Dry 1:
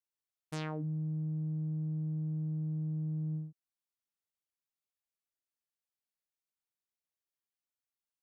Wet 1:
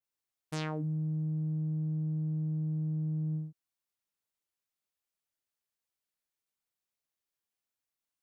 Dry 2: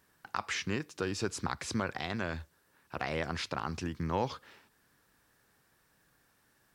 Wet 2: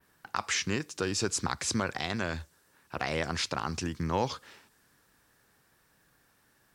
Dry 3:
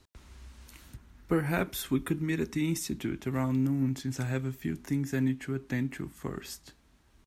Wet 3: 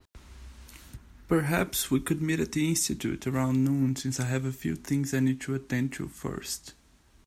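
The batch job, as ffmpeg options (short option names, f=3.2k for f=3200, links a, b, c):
-af "adynamicequalizer=threshold=0.00141:dfrequency=7300:dqfactor=0.79:tfrequency=7300:tqfactor=0.79:attack=5:release=100:ratio=0.375:range=4:mode=boostabove:tftype=bell,volume=2.5dB"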